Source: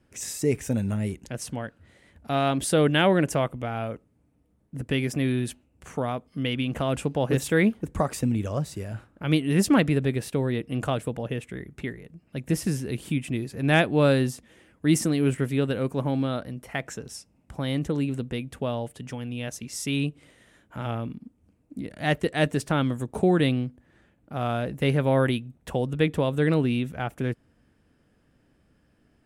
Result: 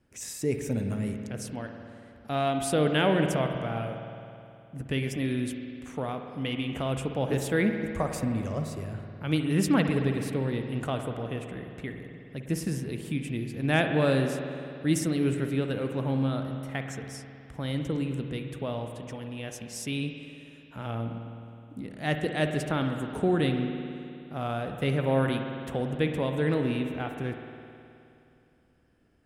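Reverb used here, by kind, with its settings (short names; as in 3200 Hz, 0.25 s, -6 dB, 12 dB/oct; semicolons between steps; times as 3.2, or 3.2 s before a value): spring tank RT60 2.7 s, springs 52 ms, chirp 20 ms, DRR 5 dB; gain -4.5 dB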